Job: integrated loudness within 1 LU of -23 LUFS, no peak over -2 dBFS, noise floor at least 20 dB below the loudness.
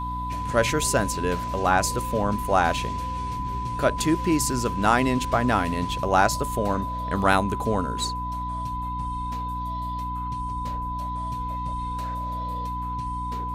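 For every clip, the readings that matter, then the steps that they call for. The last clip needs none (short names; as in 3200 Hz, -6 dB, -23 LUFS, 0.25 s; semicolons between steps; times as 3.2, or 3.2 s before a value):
hum 60 Hz; harmonics up to 300 Hz; hum level -31 dBFS; steady tone 1000 Hz; tone level -29 dBFS; loudness -25.5 LUFS; peak -4.5 dBFS; loudness target -23.0 LUFS
-> de-hum 60 Hz, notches 5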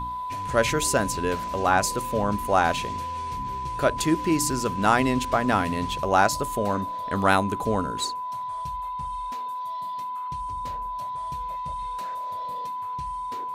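hum none; steady tone 1000 Hz; tone level -29 dBFS
-> notch 1000 Hz, Q 30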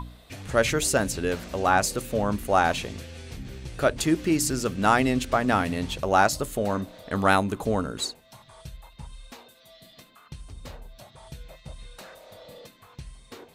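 steady tone none; loudness -24.5 LUFS; peak -5.0 dBFS; loudness target -23.0 LUFS
-> gain +1.5 dB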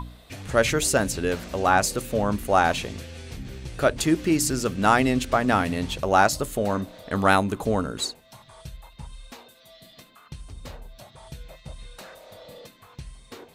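loudness -23.0 LUFS; peak -3.5 dBFS; noise floor -54 dBFS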